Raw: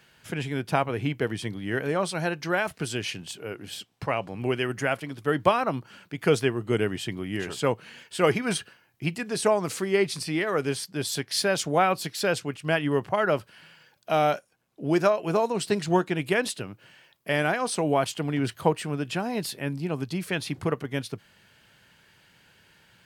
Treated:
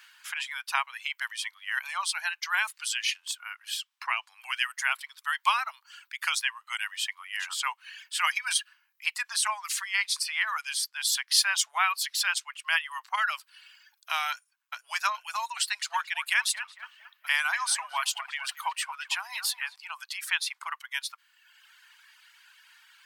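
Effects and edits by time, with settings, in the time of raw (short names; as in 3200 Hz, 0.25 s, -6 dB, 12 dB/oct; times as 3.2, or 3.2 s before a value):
14.3–14.91 echo throw 0.42 s, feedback 80%, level -6.5 dB
15.63–19.76 darkening echo 0.225 s, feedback 45%, low-pass 2400 Hz, level -8 dB
whole clip: steep high-pass 990 Hz 48 dB/oct; reverb removal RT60 1.1 s; dynamic EQ 1300 Hz, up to -5 dB, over -44 dBFS, Q 2; gain +5.5 dB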